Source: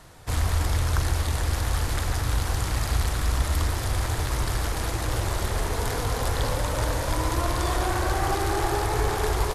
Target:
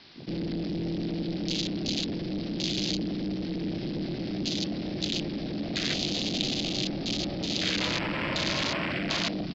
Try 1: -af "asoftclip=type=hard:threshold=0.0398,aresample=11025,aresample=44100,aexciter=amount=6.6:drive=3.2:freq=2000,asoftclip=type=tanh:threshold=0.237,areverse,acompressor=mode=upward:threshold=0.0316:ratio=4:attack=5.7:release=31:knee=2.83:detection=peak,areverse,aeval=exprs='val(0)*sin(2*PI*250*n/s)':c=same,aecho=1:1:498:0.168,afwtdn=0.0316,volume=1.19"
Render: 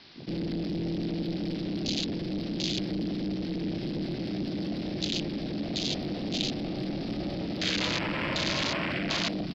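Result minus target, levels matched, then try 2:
saturation: distortion +15 dB
-af "asoftclip=type=hard:threshold=0.0398,aresample=11025,aresample=44100,aexciter=amount=6.6:drive=3.2:freq=2000,asoftclip=type=tanh:threshold=0.596,areverse,acompressor=mode=upward:threshold=0.0316:ratio=4:attack=5.7:release=31:knee=2.83:detection=peak,areverse,aeval=exprs='val(0)*sin(2*PI*250*n/s)':c=same,aecho=1:1:498:0.168,afwtdn=0.0316,volume=1.19"

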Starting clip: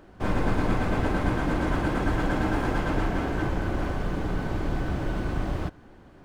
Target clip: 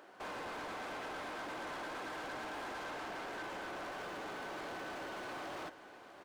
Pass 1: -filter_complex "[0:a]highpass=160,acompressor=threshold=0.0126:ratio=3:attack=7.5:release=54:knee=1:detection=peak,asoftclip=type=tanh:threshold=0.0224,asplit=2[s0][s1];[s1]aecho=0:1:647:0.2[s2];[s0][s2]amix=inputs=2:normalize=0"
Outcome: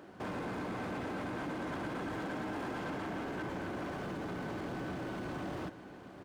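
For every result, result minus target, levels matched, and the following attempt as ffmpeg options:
125 Hz band +12.5 dB; saturation: distortion -6 dB
-filter_complex "[0:a]highpass=560,acompressor=threshold=0.0126:ratio=3:attack=7.5:release=54:knee=1:detection=peak,asoftclip=type=tanh:threshold=0.0224,asplit=2[s0][s1];[s1]aecho=0:1:647:0.2[s2];[s0][s2]amix=inputs=2:normalize=0"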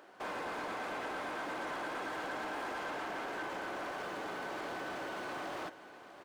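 saturation: distortion -8 dB
-filter_complex "[0:a]highpass=560,acompressor=threshold=0.0126:ratio=3:attack=7.5:release=54:knee=1:detection=peak,asoftclip=type=tanh:threshold=0.00944,asplit=2[s0][s1];[s1]aecho=0:1:647:0.2[s2];[s0][s2]amix=inputs=2:normalize=0"

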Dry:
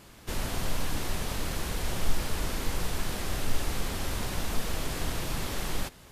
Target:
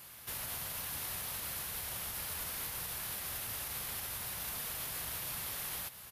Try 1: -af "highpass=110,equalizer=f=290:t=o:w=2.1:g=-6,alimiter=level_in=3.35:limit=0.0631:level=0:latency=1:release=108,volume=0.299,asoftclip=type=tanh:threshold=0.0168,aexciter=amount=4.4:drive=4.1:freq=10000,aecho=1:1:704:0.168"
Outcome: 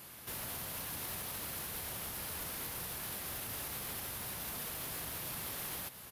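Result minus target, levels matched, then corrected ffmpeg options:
saturation: distortion +18 dB; 250 Hz band +6.0 dB
-af "highpass=110,equalizer=f=290:t=o:w=2.1:g=-14,alimiter=level_in=3.35:limit=0.0631:level=0:latency=1:release=108,volume=0.299,asoftclip=type=tanh:threshold=0.0531,aexciter=amount=4.4:drive=4.1:freq=10000,aecho=1:1:704:0.168"

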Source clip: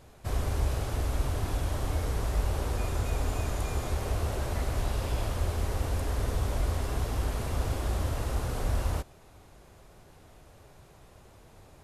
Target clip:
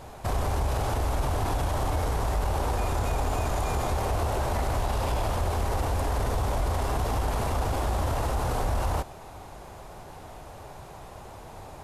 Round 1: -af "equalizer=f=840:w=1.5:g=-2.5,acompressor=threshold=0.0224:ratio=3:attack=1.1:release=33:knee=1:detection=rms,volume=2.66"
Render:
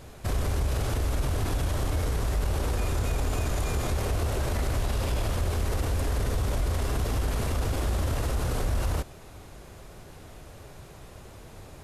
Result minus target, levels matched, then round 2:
1 kHz band -7.0 dB
-af "equalizer=f=840:w=1.5:g=8.5,acompressor=threshold=0.0224:ratio=3:attack=1.1:release=33:knee=1:detection=rms,volume=2.66"

